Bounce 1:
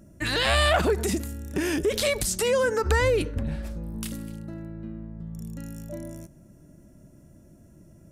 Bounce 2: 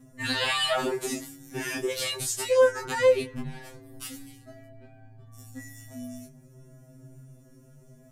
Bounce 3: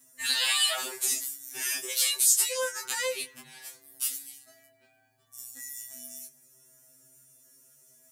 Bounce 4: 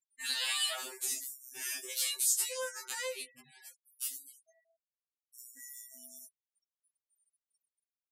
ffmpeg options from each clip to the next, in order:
-filter_complex "[0:a]asplit=2[s0][s1];[s1]alimiter=limit=0.0708:level=0:latency=1:release=454,volume=1.19[s2];[s0][s2]amix=inputs=2:normalize=0,flanger=delay=19.5:depth=2.4:speed=0.35,afftfilt=real='re*2.45*eq(mod(b,6),0)':imag='im*2.45*eq(mod(b,6),0)':win_size=2048:overlap=0.75"
-af "aderivative,volume=2.82"
-af "afftfilt=real='re*gte(hypot(re,im),0.00562)':imag='im*gte(hypot(re,im),0.00562)':win_size=1024:overlap=0.75,volume=0.422"

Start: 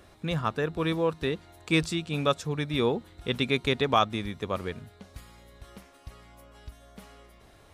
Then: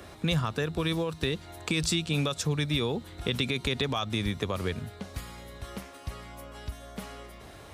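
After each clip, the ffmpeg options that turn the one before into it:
-filter_complex "[0:a]highpass=49,alimiter=limit=0.1:level=0:latency=1:release=50,acrossover=split=120|3000[s0][s1][s2];[s1]acompressor=threshold=0.0141:ratio=6[s3];[s0][s3][s2]amix=inputs=3:normalize=0,volume=2.66"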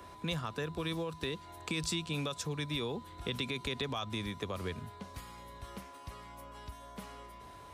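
-filter_complex "[0:a]acrossover=split=200[s0][s1];[s0]alimiter=level_in=1.88:limit=0.0631:level=0:latency=1:release=360,volume=0.531[s2];[s2][s1]amix=inputs=2:normalize=0,aeval=exprs='val(0)+0.00631*sin(2*PI*1000*n/s)':c=same,volume=0.447"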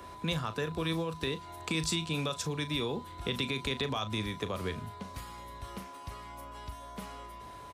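-filter_complex "[0:a]asplit=2[s0][s1];[s1]adelay=37,volume=0.266[s2];[s0][s2]amix=inputs=2:normalize=0,volume=1.41"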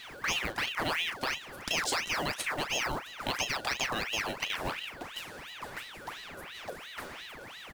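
-af "acrusher=bits=4:mode=log:mix=0:aa=0.000001,aeval=exprs='val(0)*sin(2*PI*1700*n/s+1700*0.75/2.9*sin(2*PI*2.9*n/s))':c=same,volume=1.5"

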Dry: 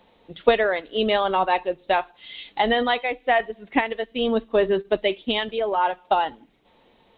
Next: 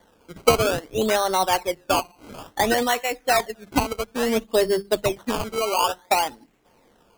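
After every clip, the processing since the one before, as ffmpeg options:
-af "bandreject=f=50:t=h:w=6,bandreject=f=100:t=h:w=6,bandreject=f=150:t=h:w=6,bandreject=f=200:t=h:w=6,acrusher=samples=17:mix=1:aa=0.000001:lfo=1:lforange=17:lforate=0.58"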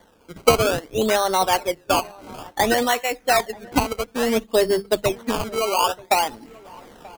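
-filter_complex "[0:a]areverse,acompressor=mode=upward:threshold=0.0158:ratio=2.5,areverse,asplit=2[s0][s1];[s1]adelay=932.9,volume=0.0794,highshelf=f=4000:g=-21[s2];[s0][s2]amix=inputs=2:normalize=0,volume=1.19"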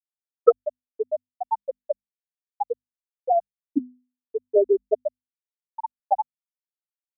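-af "afftfilt=real='re*gte(hypot(re,im),1.26)':imag='im*gte(hypot(re,im),1.26)':win_size=1024:overlap=0.75,bandreject=f=50:t=h:w=6,bandreject=f=100:t=h:w=6,bandreject=f=150:t=h:w=6,bandreject=f=200:t=h:w=6,bandreject=f=250:t=h:w=6,volume=1.33"

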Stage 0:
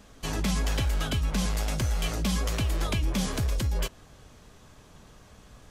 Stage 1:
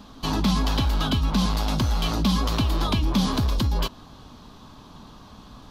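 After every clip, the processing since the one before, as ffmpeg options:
-filter_complex "[0:a]equalizer=f=250:t=o:w=1:g=9,equalizer=f=500:t=o:w=1:g=-5,equalizer=f=1000:t=o:w=1:g=10,equalizer=f=2000:t=o:w=1:g=-8,equalizer=f=4000:t=o:w=1:g=10,equalizer=f=8000:t=o:w=1:g=-10,asplit=2[s0][s1];[s1]alimiter=limit=0.106:level=0:latency=1,volume=0.841[s2];[s0][s2]amix=inputs=2:normalize=0,volume=0.841"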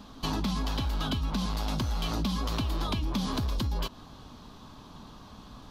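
-af "acompressor=threshold=0.0631:ratio=6,volume=0.75"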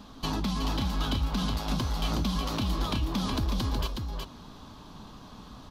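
-af "aecho=1:1:369:0.596"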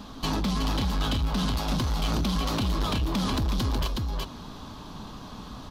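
-af "asoftclip=type=tanh:threshold=0.0422,volume=2"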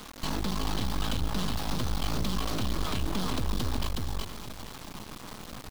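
-af "acrusher=bits=4:dc=4:mix=0:aa=0.000001,aecho=1:1:469:0.211"

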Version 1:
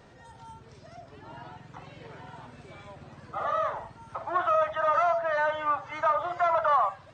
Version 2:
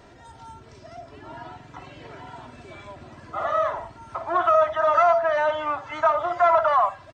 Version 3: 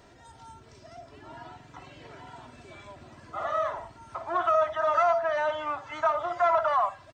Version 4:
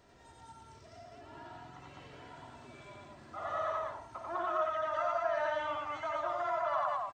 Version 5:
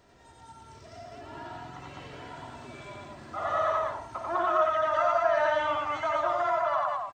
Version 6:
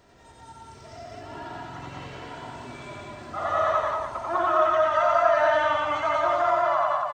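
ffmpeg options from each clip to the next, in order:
-af "aecho=1:1:3:0.45,volume=1.58"
-af "highshelf=f=4500:g=6,volume=0.531"
-filter_complex "[0:a]alimiter=limit=0.0944:level=0:latency=1:release=72,asplit=2[s0][s1];[s1]aecho=0:1:90.38|204.1:0.891|0.891[s2];[s0][s2]amix=inputs=2:normalize=0,volume=0.376"
-af "dynaudnorm=f=220:g=7:m=1.88,volume=1.33"
-af "aecho=1:1:180:0.631,volume=1.41"

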